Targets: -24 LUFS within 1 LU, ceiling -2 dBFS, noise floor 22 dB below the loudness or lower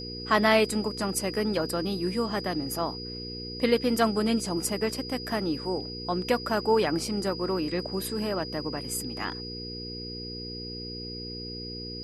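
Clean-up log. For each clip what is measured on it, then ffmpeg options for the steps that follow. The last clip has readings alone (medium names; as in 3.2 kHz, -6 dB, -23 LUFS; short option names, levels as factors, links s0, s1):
hum 60 Hz; highest harmonic 480 Hz; hum level -37 dBFS; steady tone 4.9 kHz; tone level -38 dBFS; loudness -29.0 LUFS; peak level -8.5 dBFS; loudness target -24.0 LUFS
-> -af "bandreject=f=60:t=h:w=4,bandreject=f=120:t=h:w=4,bandreject=f=180:t=h:w=4,bandreject=f=240:t=h:w=4,bandreject=f=300:t=h:w=4,bandreject=f=360:t=h:w=4,bandreject=f=420:t=h:w=4,bandreject=f=480:t=h:w=4"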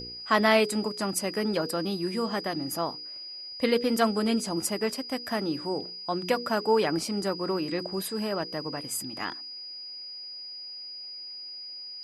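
hum not found; steady tone 4.9 kHz; tone level -38 dBFS
-> -af "bandreject=f=4900:w=30"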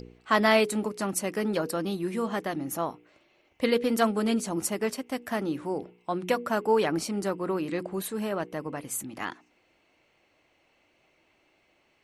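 steady tone not found; loudness -28.5 LUFS; peak level -8.0 dBFS; loudness target -24.0 LUFS
-> -af "volume=1.68"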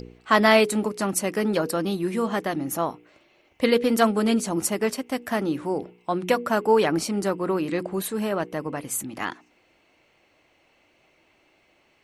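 loudness -24.0 LUFS; peak level -3.5 dBFS; noise floor -64 dBFS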